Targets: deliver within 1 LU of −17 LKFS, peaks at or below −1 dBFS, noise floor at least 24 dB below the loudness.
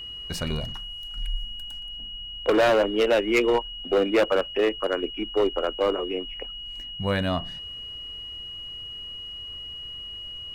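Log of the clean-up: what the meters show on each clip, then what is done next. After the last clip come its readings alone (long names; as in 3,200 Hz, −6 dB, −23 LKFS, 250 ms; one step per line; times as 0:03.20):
share of clipped samples 1.7%; peaks flattened at −15.5 dBFS; interfering tone 2,900 Hz; level of the tone −35 dBFS; integrated loudness −27.0 LKFS; sample peak −15.5 dBFS; target loudness −17.0 LKFS
→ clipped peaks rebuilt −15.5 dBFS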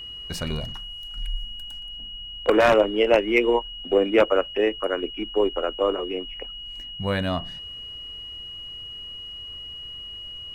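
share of clipped samples 0.0%; interfering tone 2,900 Hz; level of the tone −35 dBFS
→ notch filter 2,900 Hz, Q 30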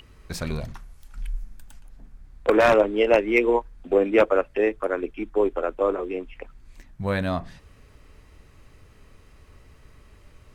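interfering tone none found; integrated loudness −23.0 LKFS; sample peak −6.0 dBFS; target loudness −17.0 LKFS
→ level +6 dB
brickwall limiter −1 dBFS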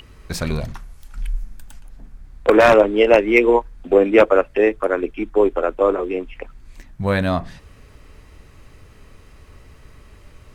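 integrated loudness −17.0 LKFS; sample peak −1.0 dBFS; background noise floor −47 dBFS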